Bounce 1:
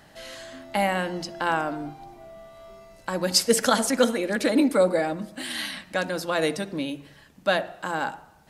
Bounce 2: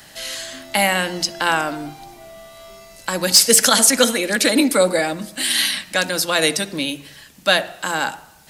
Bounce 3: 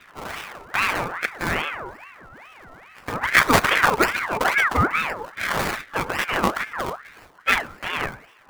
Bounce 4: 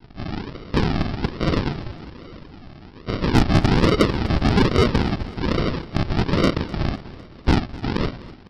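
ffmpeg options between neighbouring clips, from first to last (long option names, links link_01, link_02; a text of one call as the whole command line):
ffmpeg -i in.wav -filter_complex "[0:a]highshelf=frequency=4000:gain=8,acrossover=split=230|1700[link_01][link_02][link_03];[link_03]acontrast=78[link_04];[link_01][link_02][link_04]amix=inputs=3:normalize=0,alimiter=level_in=4.5dB:limit=-1dB:release=50:level=0:latency=1,volume=-1dB" out.wav
ffmpeg -i in.wav -filter_complex "[0:a]acrossover=split=230|1500[link_01][link_02][link_03];[link_03]acrusher=samples=34:mix=1:aa=0.000001:lfo=1:lforange=34:lforate=1.9[link_04];[link_01][link_02][link_04]amix=inputs=3:normalize=0,aeval=exprs='val(0)*sin(2*PI*1300*n/s+1300*0.5/2.4*sin(2*PI*2.4*n/s))':channel_layout=same,volume=-1dB" out.wav
ffmpeg -i in.wav -af "aresample=11025,acrusher=samples=18:mix=1:aa=0.000001:lfo=1:lforange=10.8:lforate=1.2,aresample=44100,asoftclip=type=tanh:threshold=-12.5dB,aecho=1:1:252|504|756|1008|1260:0.112|0.064|0.0365|0.0208|0.0118,volume=5dB" out.wav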